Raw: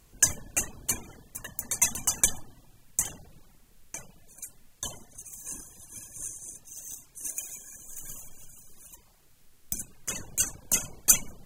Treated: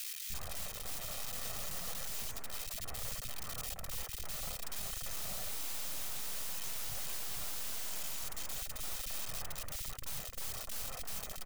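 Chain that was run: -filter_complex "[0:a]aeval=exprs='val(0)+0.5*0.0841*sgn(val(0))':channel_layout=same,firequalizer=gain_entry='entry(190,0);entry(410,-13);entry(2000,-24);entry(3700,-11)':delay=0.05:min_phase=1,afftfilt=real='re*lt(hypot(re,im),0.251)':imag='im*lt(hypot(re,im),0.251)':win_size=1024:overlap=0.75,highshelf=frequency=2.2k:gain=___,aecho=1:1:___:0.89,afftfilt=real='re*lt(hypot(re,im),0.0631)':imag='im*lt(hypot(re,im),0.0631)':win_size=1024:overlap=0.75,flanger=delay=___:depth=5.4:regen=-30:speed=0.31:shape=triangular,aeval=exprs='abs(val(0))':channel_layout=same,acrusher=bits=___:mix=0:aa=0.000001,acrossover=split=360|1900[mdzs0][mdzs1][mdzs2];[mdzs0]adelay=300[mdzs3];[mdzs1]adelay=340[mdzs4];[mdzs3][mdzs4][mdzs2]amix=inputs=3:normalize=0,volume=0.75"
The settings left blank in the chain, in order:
11.5, 1.6, 0.6, 10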